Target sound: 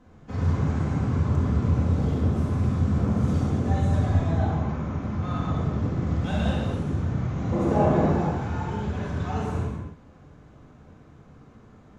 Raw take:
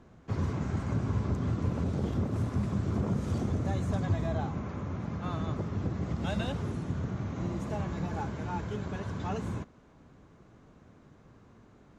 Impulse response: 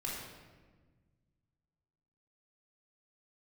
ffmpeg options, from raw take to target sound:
-filter_complex "[0:a]asettb=1/sr,asplit=3[link_01][link_02][link_03];[link_01]atrim=end=7.524[link_04];[link_02]atrim=start=7.52:end=8.09,asetpts=PTS-STARTPTS,afade=type=in:duration=0.004:curve=qsin,afade=type=out:start_time=0.566:duration=0.004:curve=qsin,equalizer=frequency=490:width_type=o:width=2.7:gain=13.5[link_05];[link_03]atrim=start=8.086[link_06];[link_04][link_05]acrossfade=duration=0.004:curve1=hsin:curve2=qsin[link_07];[link_07][link_06]acrossfade=duration=0.004:curve1=qsin:curve2=hsin[link_08];[1:a]atrim=start_sample=2205,afade=type=out:start_time=0.25:duration=0.01,atrim=end_sample=11466,asetrate=27783,aresample=44100[link_09];[link_08][link_09]afir=irnorm=-1:irlink=0"

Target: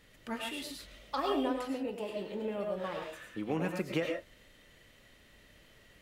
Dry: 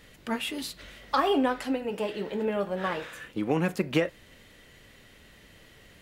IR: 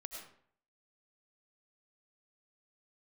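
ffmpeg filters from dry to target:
-filter_complex "[0:a]asettb=1/sr,asplit=3[link_01][link_02][link_03];[link_01]atrim=end=0.844[link_04];[link_02]atrim=start=0.84:end=3.13,asetpts=PTS-STARTPTS,afade=type=in:duration=0.004:curve=qsin,afade=type=out:start_time=2.286:duration=0.004:curve=qsin,equalizer=frequency=1600:width_type=o:width=0.86:gain=-5.5[link_05];[link_03]atrim=start=3.126[link_06];[link_04][link_05]acrossfade=duration=0.004:curve1=hsin:curve2=qsin[link_07];[link_07][link_06]acrossfade=duration=0.004:curve1=qsin:curve2=hsin[link_08];[1:a]atrim=start_sample=2205,afade=type=out:start_time=0.19:duration=0.01,atrim=end_sample=8820,asetrate=42336,aresample=44100[link_09];[link_08][link_09]afir=irnorm=-1:irlink=0,volume=-2.5dB"

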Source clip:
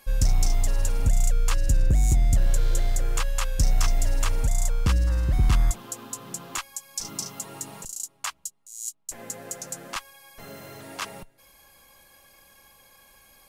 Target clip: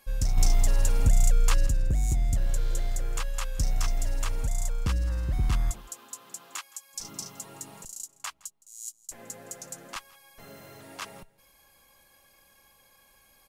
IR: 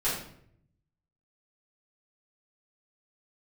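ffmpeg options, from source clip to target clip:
-filter_complex "[0:a]asettb=1/sr,asplit=3[link_01][link_02][link_03];[link_01]atrim=end=0.374[link_04];[link_02]atrim=start=0.37:end=1.67,asetpts=PTS-STARTPTS,afade=type=in:duration=0.004:curve=qsin,afade=type=out:start_time=1.296:duration=0.004:curve=qsin,acontrast=64[link_05];[link_03]atrim=start=1.666[link_06];[link_04][link_05]acrossfade=duration=0.004:curve1=hsin:curve2=qsin[link_07];[link_07][link_06]acrossfade=duration=0.004:curve1=qsin:curve2=hsin,asettb=1/sr,asplit=3[link_08][link_09][link_10];[link_08]atrim=end=5.814[link_11];[link_09]atrim=start=5.81:end=6.94,asetpts=PTS-STARTPTS,afade=type=in:duration=0.004:curve=qsin,afade=type=out:start_time=1.126:duration=0.004:curve=qsin,highpass=frequency=810:poles=1[link_12];[link_10]atrim=start=6.936[link_13];[link_11][link_12]acrossfade=duration=0.004:curve1=hsin:curve2=qsin[link_14];[link_14][link_13]acrossfade=duration=0.004:curve1=qsin:curve2=hsin,aecho=1:1:165:0.0708,volume=-5.5dB"

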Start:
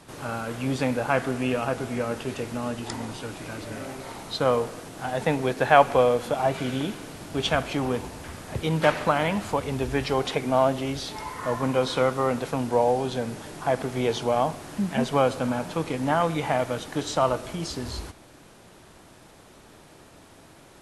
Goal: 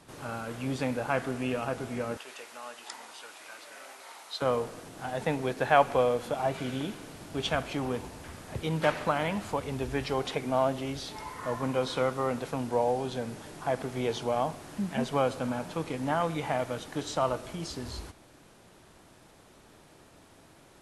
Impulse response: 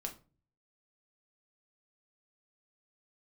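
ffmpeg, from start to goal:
-filter_complex "[0:a]asettb=1/sr,asplit=3[link_01][link_02][link_03];[link_01]atrim=end=2.174[link_04];[link_02]atrim=start=2.17:end=4.42,asetpts=PTS-STARTPTS,afade=type=in:duration=0.004:curve=qsin,afade=type=out:start_time=2.246:duration=0.004:curve=qsin,highpass=840[link_05];[link_03]atrim=start=4.416[link_06];[link_04][link_05]acrossfade=duration=0.004:curve1=hsin:curve2=qsin[link_07];[link_07][link_06]acrossfade=duration=0.004:curve1=qsin:curve2=hsin,volume=-5.5dB"

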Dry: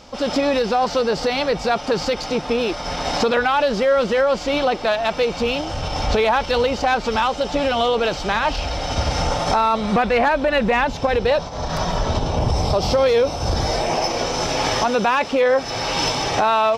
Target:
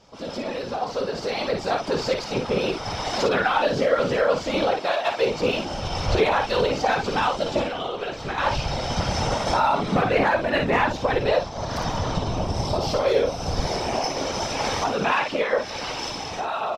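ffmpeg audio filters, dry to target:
ffmpeg -i in.wav -filter_complex "[0:a]asettb=1/sr,asplit=3[link_01][link_02][link_03];[link_01]atrim=end=4.734[link_04];[link_02]atrim=start=4.73:end=5.22,asetpts=PTS-STARTPTS,afade=type=in:duration=0.004:curve=qsin,afade=type=out:start_time=0.486:duration=0.004:curve=qsin,highpass=340[link_05];[link_03]atrim=start=5.216[link_06];[link_04][link_05]acrossfade=duration=0.004:curve1=hsin:curve2=qsin[link_07];[link_07][link_06]acrossfade=duration=0.004:curve1=qsin:curve2=hsin,asettb=1/sr,asplit=3[link_08][link_09][link_10];[link_08]atrim=end=7.624[link_11];[link_09]atrim=start=7.62:end=8.38,asetpts=PTS-STARTPTS,afade=type=in:duration=0.004:curve=qsin,afade=type=out:start_time=0.756:duration=0.004:curve=qsin,acrossover=split=1300|2600[link_12][link_13][link_14];[link_12]acompressor=threshold=-27dB:ratio=4[link_15];[link_13]acompressor=threshold=-34dB:ratio=4[link_16];[link_14]acompressor=threshold=-41dB:ratio=4[link_17];[link_15][link_16][link_17]amix=inputs=3:normalize=0[link_18];[link_10]atrim=start=8.376[link_19];[link_11][link_18]acrossfade=duration=0.004:curve1=hsin:curve2=qsin[link_20];[link_20][link_19]acrossfade=duration=0.004:curve1=qsin:curve2=hsin,asettb=1/sr,asplit=3[link_21][link_22][link_23];[link_21]atrim=end=15.024[link_24];[link_22]atrim=start=15.02:end=15.92,asetpts=PTS-STARTPTS,afade=type=in:duration=0.004:curve=qsin,afade=type=out:start_time=0.896:duration=0.004:curve=qsin,equalizer=frequency=2300:width=0.6:gain=5[link_25];[link_23]atrim=start=15.916[link_26];[link_24][link_25]acrossfade=duration=0.004:curve1=hsin:curve2=qsin[link_27];[link_27][link_26]acrossfade=duration=0.004:curve1=qsin:curve2=hsin,aecho=1:1:21|55:0.282|0.531,afftfilt=real='hypot(re,im)*cos(2*PI*random(0))':imag='hypot(re,im)*sin(2*PI*random(1))':win_size=512:overlap=0.75,dynaudnorm=framelen=130:gausssize=21:maxgain=10dB,volume=-6dB" out.wav

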